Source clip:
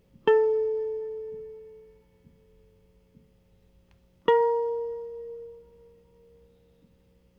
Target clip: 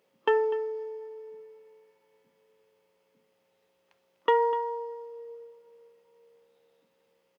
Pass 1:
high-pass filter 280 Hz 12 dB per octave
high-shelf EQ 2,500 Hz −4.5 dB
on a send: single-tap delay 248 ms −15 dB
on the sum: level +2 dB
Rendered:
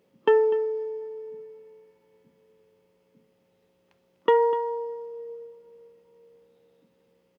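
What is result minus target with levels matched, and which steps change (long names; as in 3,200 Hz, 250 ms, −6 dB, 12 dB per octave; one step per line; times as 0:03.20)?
250 Hz band +5.0 dB
change: high-pass filter 580 Hz 12 dB per octave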